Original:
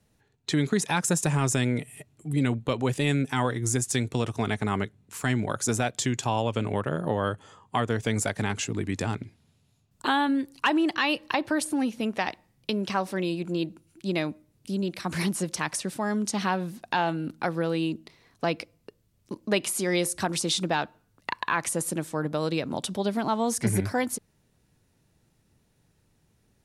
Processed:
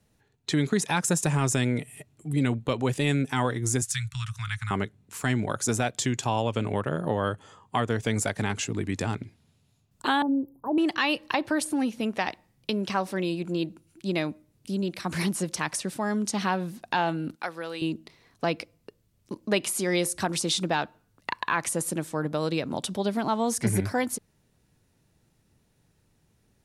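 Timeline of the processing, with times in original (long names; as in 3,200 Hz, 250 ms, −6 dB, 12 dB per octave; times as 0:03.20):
0:03.82–0:04.71: Chebyshev band-stop filter 120–1,300 Hz, order 3
0:10.22–0:10.78: inverse Chebyshev band-stop filter 2,300–6,100 Hz, stop band 70 dB
0:17.35–0:17.82: high-pass filter 1,100 Hz 6 dB per octave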